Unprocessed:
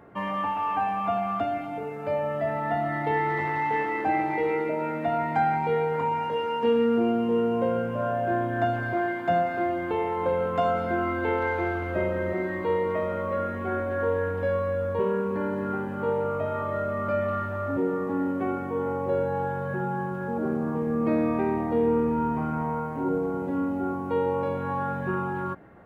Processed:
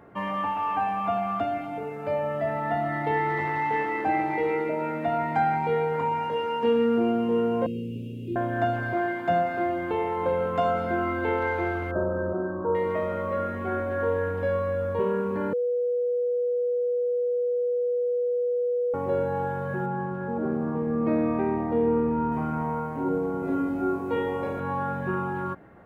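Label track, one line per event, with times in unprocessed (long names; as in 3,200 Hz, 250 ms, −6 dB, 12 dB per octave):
7.660000	8.360000	Chebyshev band-stop filter 440–2,500 Hz, order 5
11.910000	12.750000	linear-phase brick-wall low-pass 1,800 Hz
15.530000	18.940000	beep over 488 Hz −22.5 dBFS
19.860000	22.320000	low-pass filter 2,300 Hz 6 dB per octave
23.410000	24.600000	flutter between parallel walls apart 3.2 metres, dies away in 0.46 s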